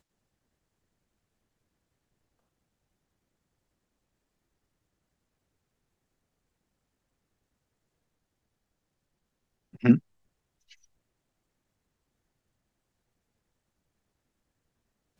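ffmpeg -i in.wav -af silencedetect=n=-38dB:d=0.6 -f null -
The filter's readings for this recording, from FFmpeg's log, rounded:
silence_start: 0.00
silence_end: 9.75 | silence_duration: 9.75
silence_start: 9.99
silence_end: 15.19 | silence_duration: 5.20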